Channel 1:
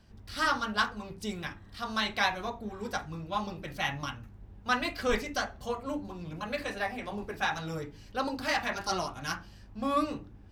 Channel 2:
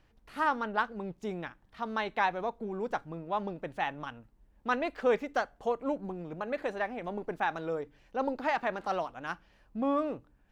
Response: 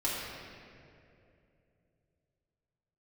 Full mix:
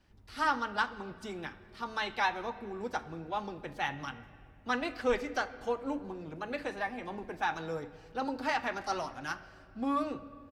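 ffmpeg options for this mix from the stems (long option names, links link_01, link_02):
-filter_complex "[0:a]lowpass=11000,volume=-9.5dB,asplit=2[link_01][link_02];[link_02]volume=-19dB[link_03];[1:a]highpass=210,equalizer=frequency=600:width_type=o:width=0.94:gain=-5,adelay=7.7,volume=-2dB,asplit=2[link_04][link_05];[link_05]volume=-20dB[link_06];[2:a]atrim=start_sample=2205[link_07];[link_03][link_06]amix=inputs=2:normalize=0[link_08];[link_08][link_07]afir=irnorm=-1:irlink=0[link_09];[link_01][link_04][link_09]amix=inputs=3:normalize=0"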